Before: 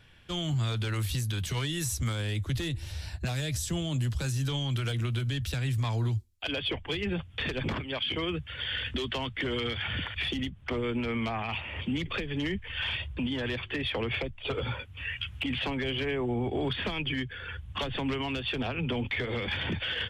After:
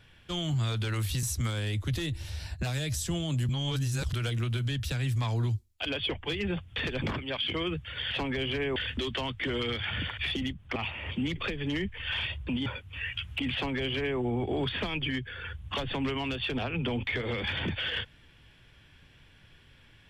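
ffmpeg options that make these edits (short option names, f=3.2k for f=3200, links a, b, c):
-filter_complex "[0:a]asplit=8[a][b][c][d][e][f][g][h];[a]atrim=end=1.232[i];[b]atrim=start=1.848:end=4.112[j];[c]atrim=start=4.108:end=4.752,asetpts=PTS-STARTPTS,areverse[k];[d]atrim=start=4.748:end=8.732[l];[e]atrim=start=15.578:end=16.232[m];[f]atrim=start=8.728:end=10.732[n];[g]atrim=start=11.458:end=13.362[o];[h]atrim=start=14.698[p];[i][j]acrossfade=d=0.004:c1=hsin:c2=hsin[q];[q][k]acrossfade=d=0.004:c1=hsin:c2=hsin[r];[r][l]acrossfade=d=0.004:c1=hsin:c2=hsin[s];[s][m]acrossfade=d=0.004:c1=hsin:c2=hsin[t];[t][n]acrossfade=d=0.004:c1=hsin:c2=hsin[u];[u][o]acrossfade=d=0.004:c1=hsin:c2=hsin[v];[v][p]acrossfade=d=0.004:c1=hsin:c2=hsin"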